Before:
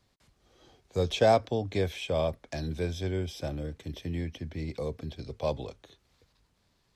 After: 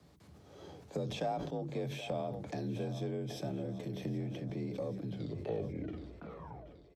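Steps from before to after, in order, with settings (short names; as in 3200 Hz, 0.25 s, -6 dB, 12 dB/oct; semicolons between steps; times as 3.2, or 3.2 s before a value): tape stop at the end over 1.95 s; tilt shelf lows +5.5 dB, about 1200 Hz; notches 50/100/150 Hz; harmonic-percussive split percussive -15 dB; high shelf 7400 Hz +5 dB; comb 7.5 ms, depth 34%; harmonic-percussive split harmonic -11 dB; compressor 4:1, threshold -52 dBFS, peak gain reduction 24.5 dB; added harmonics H 6 -33 dB, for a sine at -37.5 dBFS; frequency shift +42 Hz; on a send: split-band echo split 360 Hz, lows 0.1 s, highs 0.776 s, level -14 dB; on the sum: sustainer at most 42 dB/s; gain +13.5 dB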